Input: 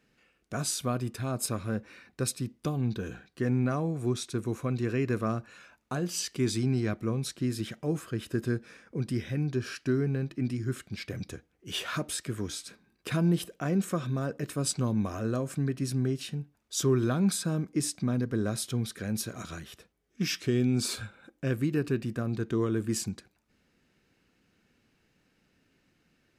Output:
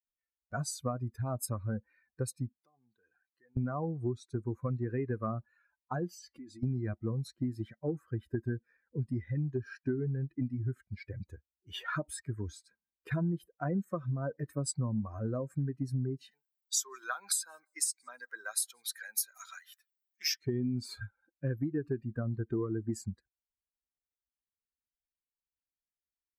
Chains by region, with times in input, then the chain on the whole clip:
0:02.58–0:03.57: high-pass filter 700 Hz 6 dB per octave + downward compressor 3 to 1, threshold −51 dBFS
0:06.13–0:06.63: downward compressor 12 to 1, threshold −36 dBFS + comb filter 3.6 ms, depth 61%
0:16.31–0:20.34: high-pass filter 850 Hz + high-shelf EQ 2,100 Hz +11.5 dB + feedback echo with a swinging delay time 172 ms, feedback 31%, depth 72 cents, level −23 dB
whole clip: spectral dynamics exaggerated over time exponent 2; parametric band 3,100 Hz −12 dB 0.89 octaves; downward compressor 6 to 1, threshold −37 dBFS; level +7 dB

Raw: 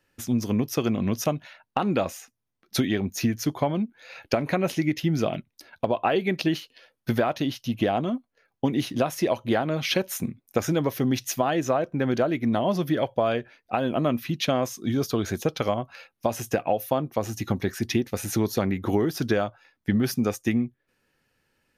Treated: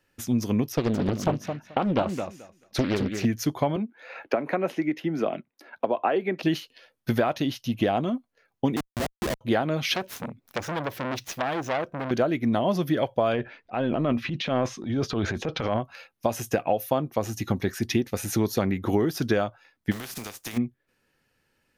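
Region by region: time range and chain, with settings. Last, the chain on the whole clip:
0:00.72–0:03.25: low-pass filter 3,200 Hz 6 dB per octave + repeating echo 217 ms, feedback 16%, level −7 dB + highs frequency-modulated by the lows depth 0.88 ms
0:03.76–0:06.43: three-way crossover with the lows and the highs turned down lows −23 dB, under 210 Hz, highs −14 dB, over 2,300 Hz + multiband upward and downward compressor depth 40%
0:08.76–0:09.41: high-shelf EQ 2,500 Hz −7.5 dB + comparator with hysteresis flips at −24 dBFS + high-pass filter 85 Hz 6 dB per octave
0:09.94–0:12.11: running median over 5 samples + upward compression, threshold −43 dBFS + saturating transformer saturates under 2,300 Hz
0:13.33–0:15.80: low-pass filter 3,300 Hz + transient designer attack −8 dB, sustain +8 dB
0:19.91–0:20.56: compressing power law on the bin magnitudes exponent 0.39 + notch filter 560 Hz, Q 16 + downward compressor 10 to 1, threshold −32 dBFS
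whole clip: no processing

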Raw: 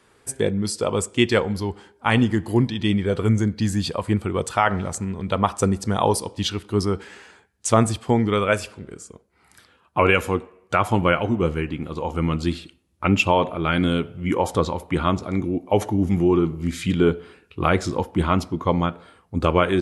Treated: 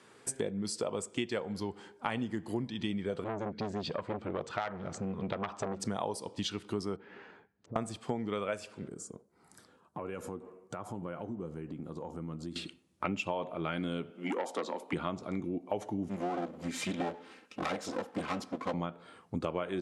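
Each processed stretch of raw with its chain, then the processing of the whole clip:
0:03.24–0:05.80: high-frequency loss of the air 160 metres + saturating transformer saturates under 1,700 Hz
0:06.96–0:07.76: treble cut that deepens with the level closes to 380 Hz, closed at −28.5 dBFS + downward compressor 5 to 1, threshold −37 dBFS + head-to-tape spacing loss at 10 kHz 35 dB
0:08.88–0:12.56: parametric band 2,600 Hz −14.5 dB 1.7 octaves + downward compressor 4 to 1, threshold −38 dBFS
0:14.10–0:14.93: Butterworth high-pass 210 Hz 48 dB per octave + saturating transformer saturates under 1,500 Hz
0:16.08–0:18.74: lower of the sound and its delayed copy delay 3.8 ms + high-pass filter 170 Hz 6 dB per octave
whole clip: Chebyshev band-pass filter 160–8,400 Hz, order 2; dynamic equaliser 630 Hz, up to +5 dB, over −33 dBFS, Q 2; downward compressor 5 to 1, threshold −33 dBFS

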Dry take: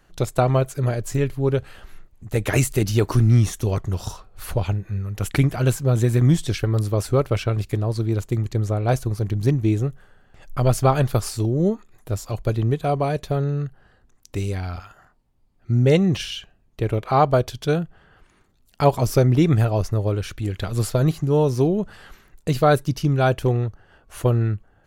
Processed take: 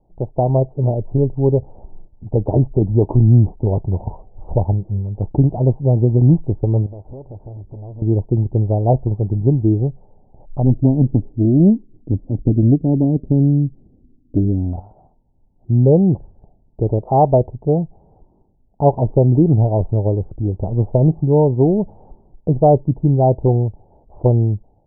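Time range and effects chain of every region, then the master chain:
0:06.86–0:08.02: downward compressor 16 to 1, threshold −30 dBFS + gain into a clipping stage and back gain 36 dB
0:10.63–0:14.73: low-pass with resonance 280 Hz, resonance Q 3.5 + highs frequency-modulated by the lows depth 0.34 ms
whole clip: Chebyshev low-pass filter 900 Hz, order 6; automatic gain control gain up to 7 dB

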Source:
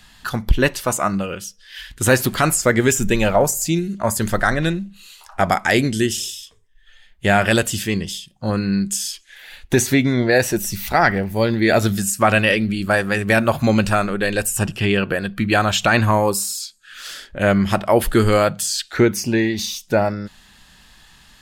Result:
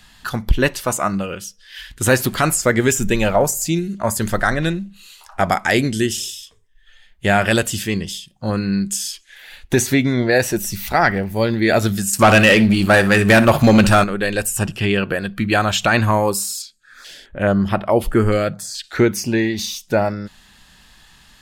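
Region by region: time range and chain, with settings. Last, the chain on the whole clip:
0:12.13–0:14.04: flutter between parallel walls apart 10.3 metres, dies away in 0.23 s + leveller curve on the samples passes 2
0:16.62–0:18.84: high-shelf EQ 4,500 Hz −9.5 dB + notch on a step sequencer 4.7 Hz 940–6,800 Hz
whole clip: no processing

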